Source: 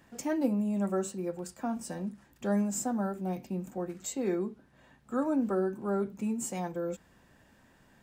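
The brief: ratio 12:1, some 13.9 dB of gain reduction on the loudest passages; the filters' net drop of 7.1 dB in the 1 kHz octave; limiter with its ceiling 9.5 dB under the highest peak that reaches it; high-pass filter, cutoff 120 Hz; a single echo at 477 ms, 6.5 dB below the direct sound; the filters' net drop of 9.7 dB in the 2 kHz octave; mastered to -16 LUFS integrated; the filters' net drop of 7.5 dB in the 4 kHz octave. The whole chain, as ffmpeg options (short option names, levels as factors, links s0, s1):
-af "highpass=120,equalizer=f=1000:t=o:g=-8.5,equalizer=f=2000:t=o:g=-8,equalizer=f=4000:t=o:g=-8,acompressor=threshold=0.0112:ratio=12,alimiter=level_in=4.73:limit=0.0631:level=0:latency=1,volume=0.211,aecho=1:1:477:0.473,volume=29.9"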